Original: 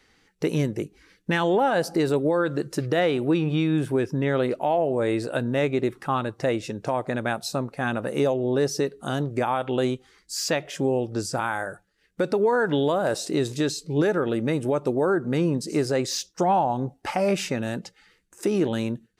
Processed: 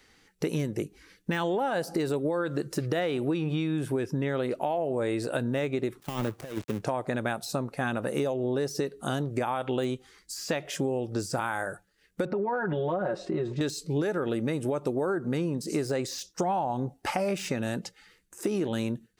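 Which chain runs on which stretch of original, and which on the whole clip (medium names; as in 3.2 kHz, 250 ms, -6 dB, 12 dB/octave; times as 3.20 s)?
6.00–6.82 s: dead-time distortion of 0.27 ms + compressor with a negative ratio -28 dBFS, ratio -0.5 + three bands expanded up and down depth 70%
12.25–13.61 s: low-pass 1.7 kHz + comb 5.5 ms, depth 88% + compression 3:1, threshold -24 dBFS
whole clip: de-esser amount 75%; treble shelf 7.9 kHz +6.5 dB; compression, threshold -25 dBFS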